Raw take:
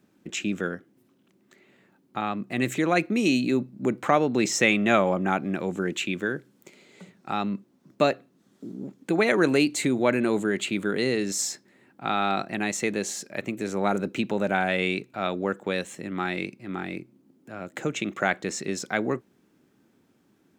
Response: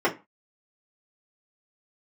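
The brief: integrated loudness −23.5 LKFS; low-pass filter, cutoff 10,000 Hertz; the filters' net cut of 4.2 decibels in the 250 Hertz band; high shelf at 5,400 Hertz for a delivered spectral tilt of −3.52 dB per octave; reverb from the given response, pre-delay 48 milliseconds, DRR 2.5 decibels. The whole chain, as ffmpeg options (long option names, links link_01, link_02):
-filter_complex "[0:a]lowpass=10000,equalizer=frequency=250:width_type=o:gain=-5.5,highshelf=frequency=5400:gain=7.5,asplit=2[link_01][link_02];[1:a]atrim=start_sample=2205,adelay=48[link_03];[link_02][link_03]afir=irnorm=-1:irlink=0,volume=-18dB[link_04];[link_01][link_04]amix=inputs=2:normalize=0,volume=1dB"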